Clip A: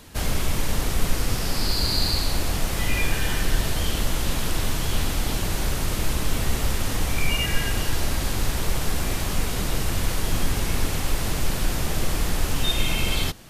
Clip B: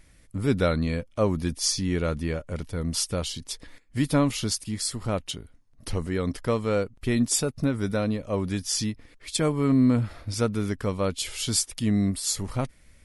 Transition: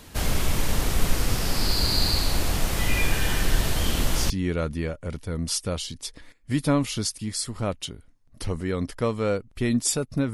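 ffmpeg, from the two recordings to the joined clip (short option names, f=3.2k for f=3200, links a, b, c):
-filter_complex "[1:a]asplit=2[a][b];[0:a]apad=whole_dur=10.33,atrim=end=10.33,atrim=end=4.302[c];[b]atrim=start=1.758:end=7.79[d];[a]atrim=start=1.32:end=1.76,asetpts=PTS-STARTPTS,volume=-7.5dB,afade=t=in:d=0.004:c=hsin,afade=t=out:st=0.436:d=0.004:c=hsin,adelay=3860[e];[c][d]acrossfade=d=0.004:c1=hsin:c2=hsin[f];[f][e]amix=inputs=2:normalize=0"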